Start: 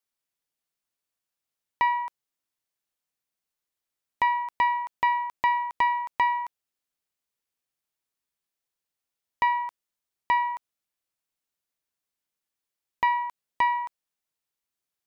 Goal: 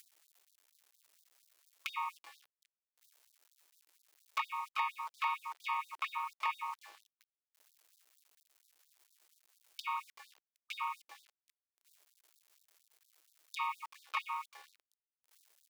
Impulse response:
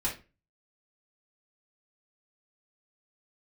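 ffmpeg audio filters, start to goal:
-filter_complex "[0:a]acrossover=split=270|640[link_01][link_02][link_03];[link_01]acompressor=threshold=-60dB:ratio=4[link_04];[link_02]acompressor=threshold=-44dB:ratio=4[link_05];[link_03]acompressor=threshold=-22dB:ratio=4[link_06];[link_04][link_05][link_06]amix=inputs=3:normalize=0,acrossover=split=170[link_07][link_08];[link_07]alimiter=level_in=36dB:limit=-24dB:level=0:latency=1:release=404,volume=-36dB[link_09];[link_09][link_08]amix=inputs=2:normalize=0,asplit=4[link_10][link_11][link_12][link_13];[link_11]asetrate=52444,aresample=44100,atempo=0.840896,volume=-6dB[link_14];[link_12]asetrate=55563,aresample=44100,atempo=0.793701,volume=-12dB[link_15];[link_13]asetrate=58866,aresample=44100,atempo=0.749154,volume=-4dB[link_16];[link_10][link_14][link_15][link_16]amix=inputs=4:normalize=0,acompressor=mode=upward:threshold=-24dB:ratio=2.5,equalizer=frequency=380:width=0.57:gain=-10.5,asplit=2[link_17][link_18];[link_18]asplit=4[link_19][link_20][link_21][link_22];[link_19]adelay=366,afreqshift=-110,volume=-21dB[link_23];[link_20]adelay=732,afreqshift=-220,volume=-27.2dB[link_24];[link_21]adelay=1098,afreqshift=-330,volume=-33.4dB[link_25];[link_22]adelay=1464,afreqshift=-440,volume=-39.6dB[link_26];[link_23][link_24][link_25][link_26]amix=inputs=4:normalize=0[link_27];[link_17][link_27]amix=inputs=2:normalize=0,asetrate=42336,aresample=44100,bandreject=frequency=720:width=20,aecho=1:1:4.6:0.81,flanger=delay=0.2:depth=7.1:regen=84:speed=1.1:shape=triangular,aeval=exprs='val(0)*gte(abs(val(0)),0.00531)':channel_layout=same,afftfilt=real='re*gte(b*sr/1024,270*pow(3600/270,0.5+0.5*sin(2*PI*4.3*pts/sr)))':imag='im*gte(b*sr/1024,270*pow(3600/270,0.5+0.5*sin(2*PI*4.3*pts/sr)))':win_size=1024:overlap=0.75,volume=-5dB"

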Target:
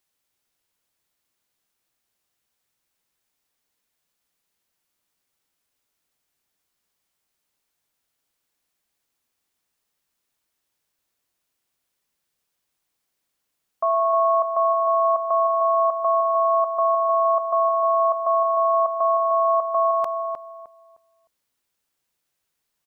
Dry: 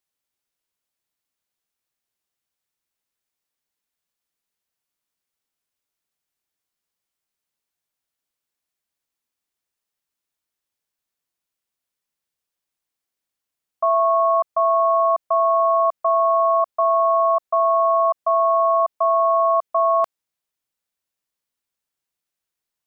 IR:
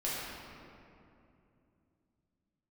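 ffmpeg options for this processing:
-filter_complex "[0:a]alimiter=limit=-20.5dB:level=0:latency=1:release=12,asplit=2[link_01][link_02];[link_02]adelay=307,lowpass=frequency=1100:poles=1,volume=-4.5dB,asplit=2[link_03][link_04];[link_04]adelay=307,lowpass=frequency=1100:poles=1,volume=0.29,asplit=2[link_05][link_06];[link_06]adelay=307,lowpass=frequency=1100:poles=1,volume=0.29,asplit=2[link_07][link_08];[link_08]adelay=307,lowpass=frequency=1100:poles=1,volume=0.29[link_09];[link_01][link_03][link_05][link_07][link_09]amix=inputs=5:normalize=0,volume=6.5dB"

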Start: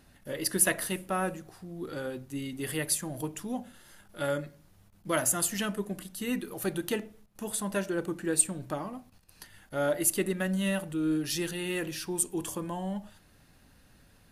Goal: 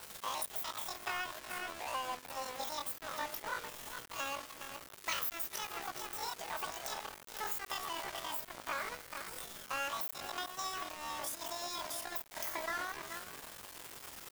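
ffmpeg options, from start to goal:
ffmpeg -i in.wav -filter_complex "[0:a]aeval=exprs='val(0)+0.5*0.0158*sgn(val(0))':channel_layout=same,afftfilt=real='re*lt(hypot(re,im),0.251)':imag='im*lt(hypot(re,im),0.251)':win_size=1024:overlap=0.75,highpass=480,equalizer=frequency=1500:width=0.84:gain=-4,asplit=2[link_01][link_02];[link_02]adelay=422,lowpass=frequency=1700:poles=1,volume=-7dB,asplit=2[link_03][link_04];[link_04]adelay=422,lowpass=frequency=1700:poles=1,volume=0.16,asplit=2[link_05][link_06];[link_06]adelay=422,lowpass=frequency=1700:poles=1,volume=0.16[link_07];[link_03][link_05][link_07]amix=inputs=3:normalize=0[link_08];[link_01][link_08]amix=inputs=2:normalize=0,asetrate=85689,aresample=44100,atempo=0.514651,acompressor=threshold=-36dB:ratio=8,aeval=exprs='val(0)*gte(abs(val(0)),0.00891)':channel_layout=same,adynamicequalizer=threshold=0.00126:dfrequency=2300:dqfactor=0.7:tfrequency=2300:tqfactor=0.7:attack=5:release=100:ratio=0.375:range=3:mode=cutabove:tftype=highshelf,volume=4.5dB" out.wav

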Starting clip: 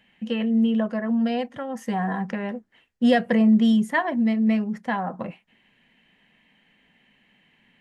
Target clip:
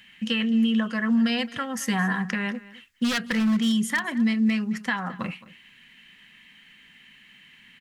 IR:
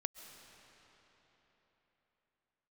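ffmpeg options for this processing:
-filter_complex "[0:a]aeval=exprs='0.224*(abs(mod(val(0)/0.224+3,4)-2)-1)':channel_layout=same,firequalizer=gain_entry='entry(140,0);entry(650,-11);entry(1200,5);entry(4900,11)':delay=0.05:min_phase=1,alimiter=limit=-19dB:level=0:latency=1:release=324,asplit=2[link_01][link_02];[link_02]aecho=0:1:217:0.112[link_03];[link_01][link_03]amix=inputs=2:normalize=0,volume=3.5dB"

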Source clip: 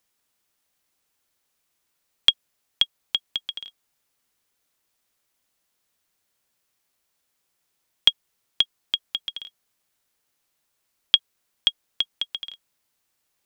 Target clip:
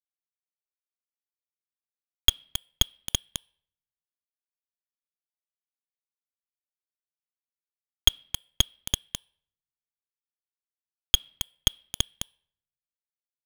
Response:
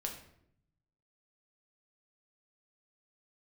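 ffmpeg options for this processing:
-filter_complex "[0:a]bandreject=frequency=364.5:width_type=h:width=4,bandreject=frequency=729:width_type=h:width=4,bandreject=frequency=1093.5:width_type=h:width=4,bandreject=frequency=1458:width_type=h:width=4,bandreject=frequency=1822.5:width_type=h:width=4,bandreject=frequency=2187:width_type=h:width=4,bandreject=frequency=2551.5:width_type=h:width=4,bandreject=frequency=2916:width_type=h:width=4,bandreject=frequency=3280.5:width_type=h:width=4,bandreject=frequency=3645:width_type=h:width=4,bandreject=frequency=4009.5:width_type=h:width=4,bandreject=frequency=4374:width_type=h:width=4,bandreject=frequency=4738.5:width_type=h:width=4,bandreject=frequency=5103:width_type=h:width=4,bandreject=frequency=5467.5:width_type=h:width=4,bandreject=frequency=5832:width_type=h:width=4,bandreject=frequency=6196.5:width_type=h:width=4,bandreject=frequency=6561:width_type=h:width=4,bandreject=frequency=6925.5:width_type=h:width=4,bandreject=frequency=7290:width_type=h:width=4,bandreject=frequency=7654.5:width_type=h:width=4,bandreject=frequency=8019:width_type=h:width=4,bandreject=frequency=8383.5:width_type=h:width=4,bandreject=frequency=8748:width_type=h:width=4,bandreject=frequency=9112.5:width_type=h:width=4,bandreject=frequency=9477:width_type=h:width=4,bandreject=frequency=9841.5:width_type=h:width=4,bandreject=frequency=10206:width_type=h:width=4,bandreject=frequency=10570.5:width_type=h:width=4,bandreject=frequency=10935:width_type=h:width=4,bandreject=frequency=11299.5:width_type=h:width=4,bandreject=frequency=11664:width_type=h:width=4,asplit=2[link_01][link_02];[link_02]adelay=270,highpass=300,lowpass=3400,asoftclip=type=hard:threshold=-10dB,volume=-6dB[link_03];[link_01][link_03]amix=inputs=2:normalize=0,aeval=exprs='val(0)*gte(abs(val(0)),0.15)':channel_layout=same,asplit=2[link_04][link_05];[1:a]atrim=start_sample=2205[link_06];[link_05][link_06]afir=irnorm=-1:irlink=0,volume=-19.5dB[link_07];[link_04][link_07]amix=inputs=2:normalize=0,aeval=exprs='0.944*(cos(1*acos(clip(val(0)/0.944,-1,1)))-cos(1*PI/2))+0.211*(cos(6*acos(clip(val(0)/0.944,-1,1)))-cos(6*PI/2))':channel_layout=same,volume=-3.5dB"

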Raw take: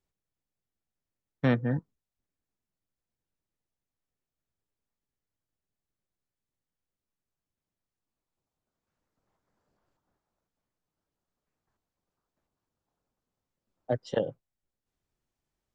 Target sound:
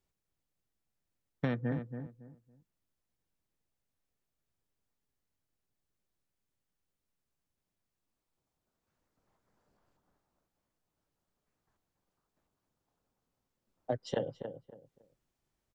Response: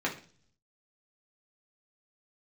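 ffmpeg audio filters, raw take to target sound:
-filter_complex "[0:a]acompressor=threshold=-31dB:ratio=6,asplit=2[link_01][link_02];[link_02]adelay=279,lowpass=frequency=1300:poles=1,volume=-8dB,asplit=2[link_03][link_04];[link_04]adelay=279,lowpass=frequency=1300:poles=1,volume=0.26,asplit=2[link_05][link_06];[link_06]adelay=279,lowpass=frequency=1300:poles=1,volume=0.26[link_07];[link_03][link_05][link_07]amix=inputs=3:normalize=0[link_08];[link_01][link_08]amix=inputs=2:normalize=0,volume=1.5dB"

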